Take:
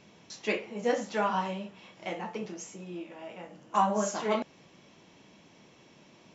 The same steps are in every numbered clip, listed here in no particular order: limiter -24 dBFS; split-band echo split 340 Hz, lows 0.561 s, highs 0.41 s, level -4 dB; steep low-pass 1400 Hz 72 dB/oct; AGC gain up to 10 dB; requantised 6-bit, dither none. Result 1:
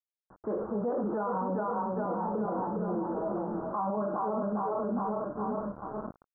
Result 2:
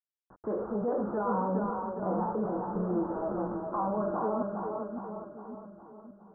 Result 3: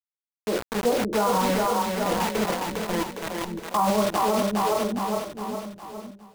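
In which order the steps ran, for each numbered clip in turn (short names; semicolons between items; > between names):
split-band echo > AGC > requantised > steep low-pass > limiter; AGC > requantised > steep low-pass > limiter > split-band echo; steep low-pass > requantised > split-band echo > limiter > AGC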